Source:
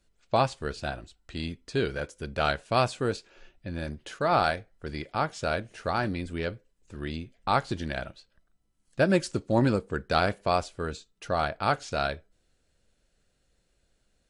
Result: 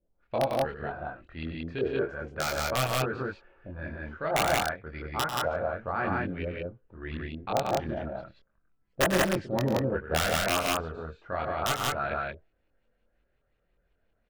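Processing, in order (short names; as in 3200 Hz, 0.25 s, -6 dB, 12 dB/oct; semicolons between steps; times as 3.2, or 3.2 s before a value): LFO low-pass saw up 2.8 Hz 460–2800 Hz; wrapped overs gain 10.5 dB; chorus voices 2, 0.33 Hz, delay 24 ms, depth 2.2 ms; on a send: loudspeakers at several distances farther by 33 m -10 dB, 47 m -11 dB, 61 m -1 dB; on the sum: gain -3.5 dB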